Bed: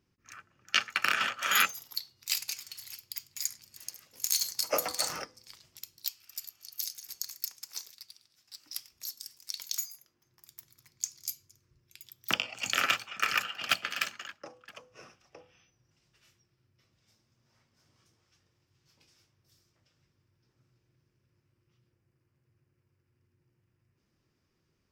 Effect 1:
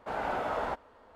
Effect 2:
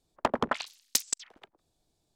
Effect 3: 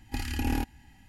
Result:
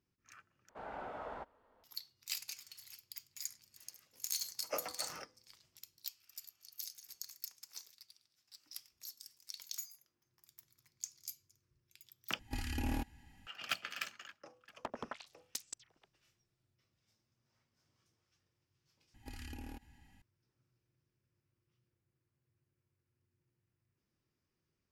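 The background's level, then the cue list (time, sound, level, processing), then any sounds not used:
bed −9.5 dB
0:00.69: overwrite with 1 −12.5 dB + high-shelf EQ 4,400 Hz −8 dB
0:12.39: overwrite with 3 −6 dB + soft clipping −22 dBFS
0:14.60: mix in 2 −16 dB
0:19.14: overwrite with 3 −8.5 dB + downward compressor, threshold −35 dBFS

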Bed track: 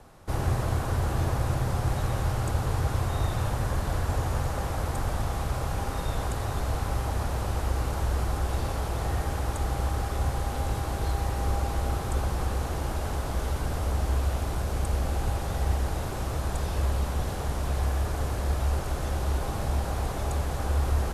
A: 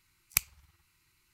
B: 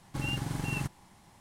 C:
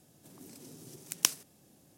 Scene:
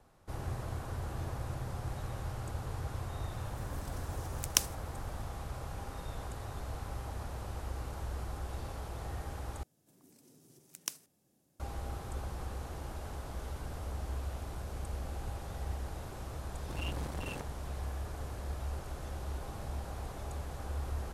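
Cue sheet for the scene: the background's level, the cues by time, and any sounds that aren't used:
bed track −12 dB
0:03.32: mix in C −1.5 dB
0:09.63: overwrite with C −11 dB + parametric band 3,300 Hz −2.5 dB 1.5 octaves
0:16.55: mix in B −3.5 dB + saturating transformer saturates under 970 Hz
not used: A

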